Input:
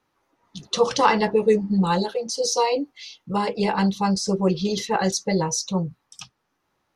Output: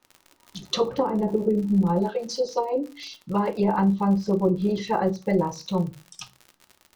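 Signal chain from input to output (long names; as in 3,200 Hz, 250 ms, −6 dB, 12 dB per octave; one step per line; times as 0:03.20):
treble cut that deepens with the level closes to 440 Hz, closed at −15.5 dBFS
surface crackle 71 per second −34 dBFS
convolution reverb RT60 0.30 s, pre-delay 3 ms, DRR 8.5 dB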